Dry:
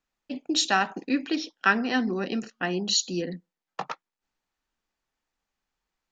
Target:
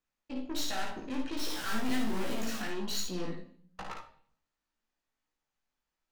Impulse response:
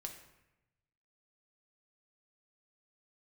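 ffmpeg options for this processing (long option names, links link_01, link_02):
-filter_complex "[0:a]asettb=1/sr,asplit=3[link_01][link_02][link_03];[link_01]atrim=end=1.374[link_04];[link_02]atrim=start=1.37:end=2.62,asetpts=PTS-STARTPTS,afade=type=in:duration=0.004:curve=qsin,afade=type=out:start_time=1.246:duration=0.004:curve=qsin,aeval=exprs='val(0)+0.5*0.0376*sgn(val(0))':channel_layout=same[link_05];[link_03]atrim=start=2.616[link_06];[link_04][link_05]acrossfade=duration=0.004:curve1=hsin:curve2=qsin[link_07];[link_07][link_06]acrossfade=duration=0.004:curve1=qsin:curve2=hsin,aeval=exprs='(tanh(39.8*val(0)+0.6)-tanh(0.6))/39.8':channel_layout=same,asplit=2[link_08][link_09];[1:a]atrim=start_sample=2205,asetrate=74970,aresample=44100,adelay=55[link_10];[link_09][link_10]afir=irnorm=-1:irlink=0,volume=5dB[link_11];[link_08][link_11]amix=inputs=2:normalize=0,flanger=delay=16:depth=3.5:speed=1.3"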